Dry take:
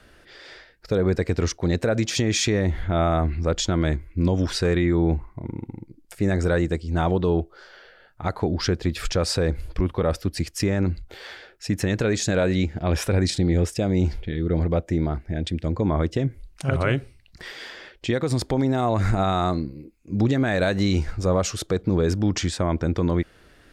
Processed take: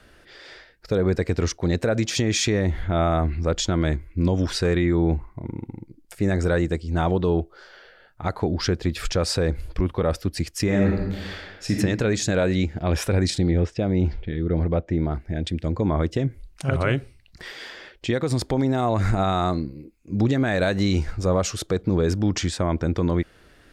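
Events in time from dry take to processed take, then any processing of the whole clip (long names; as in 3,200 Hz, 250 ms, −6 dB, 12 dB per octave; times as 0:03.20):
0:10.64–0:11.76: thrown reverb, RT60 1.1 s, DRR −1 dB
0:13.51–0:15.11: high-frequency loss of the air 170 metres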